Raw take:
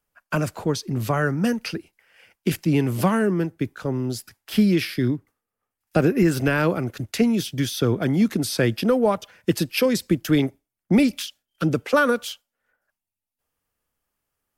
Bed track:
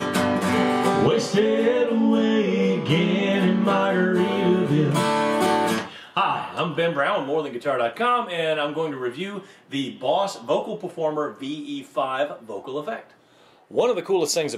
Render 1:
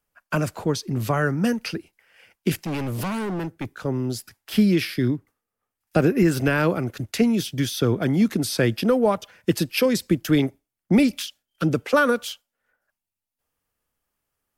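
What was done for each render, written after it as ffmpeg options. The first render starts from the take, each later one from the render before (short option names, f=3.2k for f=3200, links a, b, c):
-filter_complex "[0:a]asettb=1/sr,asplit=3[a][b][c];[a]atrim=end=2.644[d];[b]atrim=start=2.64:end=3.71,asetpts=PTS-STARTPTS,afade=t=in:d=0.004:c=qsin,afade=t=out:st=1.066:d=0.004:c=qsin,volume=25dB,asoftclip=hard,volume=-25dB[e];[c]atrim=start=3.706[f];[d][e]acrossfade=d=0.004:c1=hsin:c2=qsin[g];[g][f]acrossfade=d=0.004:c1=qsin:c2=hsin"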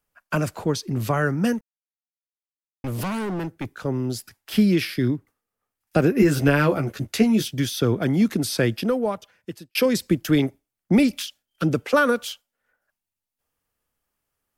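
-filter_complex "[0:a]asettb=1/sr,asplit=3[a][b][c];[a]atrim=end=6.184[d];[b]atrim=start=6.18:end=7.48,asetpts=PTS-STARTPTS,afade=t=in:d=0.004:c=qsin,afade=t=out:st=1.296:d=0.004:c=qsin,asplit=2[e][f];[f]adelay=14,volume=-4dB[g];[e][g]amix=inputs=2:normalize=0,atrim=end_sample=57330[h];[c]atrim=start=7.476[i];[d][h]acrossfade=d=0.004:c1=hsin:c2=qsin[j];[j][i]acrossfade=d=0.004:c1=qsin:c2=hsin,asplit=4[k][l][m][n];[k]atrim=end=1.61,asetpts=PTS-STARTPTS,afade=t=out:st=1.606:d=0.004:c=hsin[o];[l]atrim=start=1.61:end=2.84,asetpts=PTS-STARTPTS,volume=0[p];[m]atrim=start=2.84:end=9.75,asetpts=PTS-STARTPTS,afade=t=in:d=0.004:c=hsin,afade=t=out:st=5.72:d=1.19[q];[n]atrim=start=9.75,asetpts=PTS-STARTPTS,afade=t=in:d=0.004:c=hsin[r];[o][p][q][r]concat=n=4:v=0:a=1"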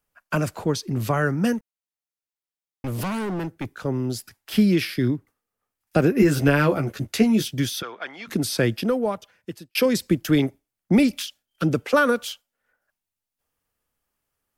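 -filter_complex "[0:a]asplit=3[a][b][c];[a]afade=t=out:st=7.81:d=0.02[d];[b]asuperpass=centerf=1900:order=4:qfactor=0.61,afade=t=in:st=7.81:d=0.02,afade=t=out:st=8.27:d=0.02[e];[c]afade=t=in:st=8.27:d=0.02[f];[d][e][f]amix=inputs=3:normalize=0"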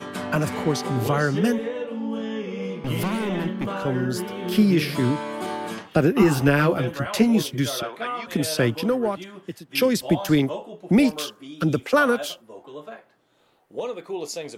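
-filter_complex "[1:a]volume=-9.5dB[a];[0:a][a]amix=inputs=2:normalize=0"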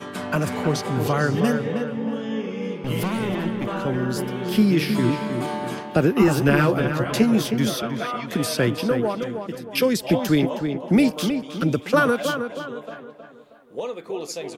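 -filter_complex "[0:a]asplit=2[a][b];[b]adelay=316,lowpass=f=2.7k:p=1,volume=-7dB,asplit=2[c][d];[d]adelay=316,lowpass=f=2.7k:p=1,volume=0.44,asplit=2[e][f];[f]adelay=316,lowpass=f=2.7k:p=1,volume=0.44,asplit=2[g][h];[h]adelay=316,lowpass=f=2.7k:p=1,volume=0.44,asplit=2[i][j];[j]adelay=316,lowpass=f=2.7k:p=1,volume=0.44[k];[a][c][e][g][i][k]amix=inputs=6:normalize=0"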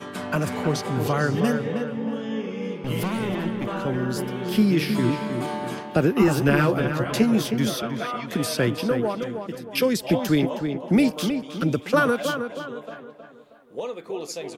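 -af "volume=-1.5dB"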